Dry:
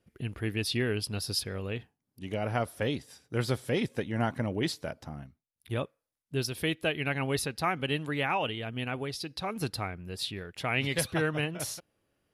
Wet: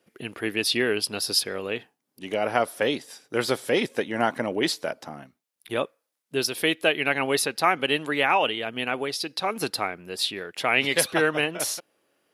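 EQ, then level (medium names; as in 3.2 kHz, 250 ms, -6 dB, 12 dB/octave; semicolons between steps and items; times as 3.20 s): high-pass 320 Hz 12 dB/octave; +8.5 dB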